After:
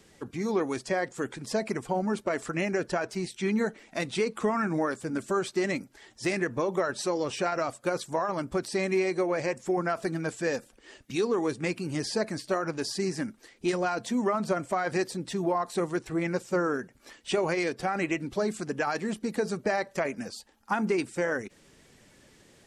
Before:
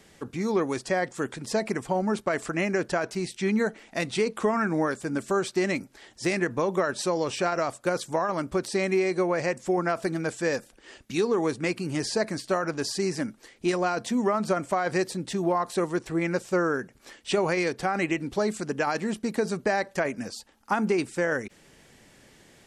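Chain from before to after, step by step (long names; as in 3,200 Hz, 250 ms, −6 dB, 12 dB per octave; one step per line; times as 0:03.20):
spectral magnitudes quantised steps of 15 dB
level −2 dB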